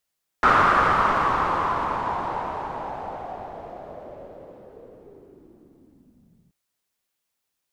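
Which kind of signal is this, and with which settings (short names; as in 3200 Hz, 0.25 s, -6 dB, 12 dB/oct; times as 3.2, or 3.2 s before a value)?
swept filtered noise white, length 6.08 s lowpass, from 1300 Hz, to 160 Hz, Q 4.3, linear, gain ramp -34.5 dB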